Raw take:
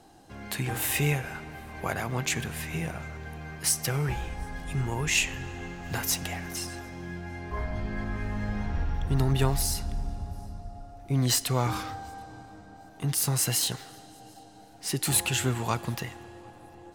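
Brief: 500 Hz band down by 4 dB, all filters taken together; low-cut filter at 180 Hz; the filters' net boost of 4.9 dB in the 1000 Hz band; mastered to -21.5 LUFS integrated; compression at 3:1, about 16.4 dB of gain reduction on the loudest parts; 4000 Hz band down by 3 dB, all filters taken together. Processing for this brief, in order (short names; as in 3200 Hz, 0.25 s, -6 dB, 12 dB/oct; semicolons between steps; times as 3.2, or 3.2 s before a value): HPF 180 Hz; bell 500 Hz -8 dB; bell 1000 Hz +9 dB; bell 4000 Hz -4.5 dB; compressor 3:1, threshold -44 dBFS; gain +22 dB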